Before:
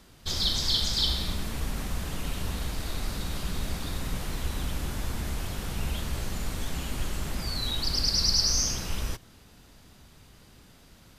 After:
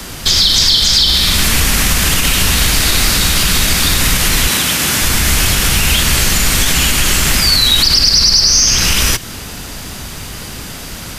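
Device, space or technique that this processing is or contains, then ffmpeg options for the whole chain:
mastering chain: -filter_complex "[0:a]equalizer=f=3.8k:t=o:w=0.54:g=-3.5,acrossover=split=140|450|1400|5700[a][b][c][d][e];[a]acompressor=threshold=-37dB:ratio=4[f];[b]acompressor=threshold=-48dB:ratio=4[g];[c]acompressor=threshold=-56dB:ratio=4[h];[d]acompressor=threshold=-32dB:ratio=4[i];[e]acompressor=threshold=-46dB:ratio=4[j];[f][g][h][i][j]amix=inputs=5:normalize=0,acompressor=threshold=-34dB:ratio=2,asoftclip=type=tanh:threshold=-23dB,tiltshelf=f=1.5k:g=-3.5,asoftclip=type=hard:threshold=-25dB,alimiter=level_in=29.5dB:limit=-1dB:release=50:level=0:latency=1,asettb=1/sr,asplit=3[k][l][m];[k]atrim=end=4.484[n];[l]atrim=start=4.48:end=5.02,asetpts=PTS-STARTPTS,afade=t=in:d=0.004:c=qsin,afade=t=out:st=0.536:d=0.004:c=qsin,highpass=140[o];[m]atrim=start=5.016[p];[n][o]acrossfade=d=0.004:c1=hsin:c2=qsin[q];[q][p]acrossfade=d=0.004:c1=qsin:c2=hsin,volume=-1dB"

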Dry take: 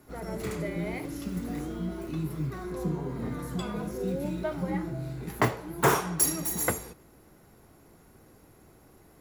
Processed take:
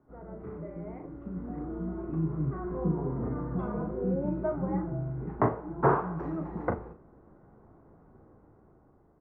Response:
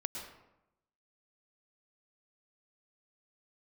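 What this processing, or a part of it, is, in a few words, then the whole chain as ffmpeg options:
action camera in a waterproof case: -filter_complex "[0:a]lowpass=f=1.3k:w=0.5412,lowpass=f=1.3k:w=1.3066,asplit=2[a][b];[b]adelay=37,volume=-7.5dB[c];[a][c]amix=inputs=2:normalize=0,dynaudnorm=f=680:g=5:m=10dB,volume=-8.5dB" -ar 48000 -c:a aac -b:a 64k

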